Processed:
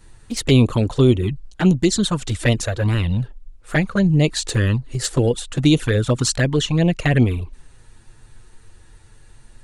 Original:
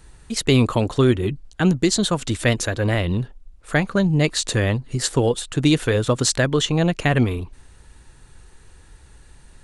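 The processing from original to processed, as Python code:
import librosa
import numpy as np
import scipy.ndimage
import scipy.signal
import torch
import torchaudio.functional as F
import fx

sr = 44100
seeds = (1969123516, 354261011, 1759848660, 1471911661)

y = fx.env_flanger(x, sr, rest_ms=10.1, full_db=-13.0)
y = fx.low_shelf(y, sr, hz=130.0, db=3.5)
y = F.gain(torch.from_numpy(y), 2.0).numpy()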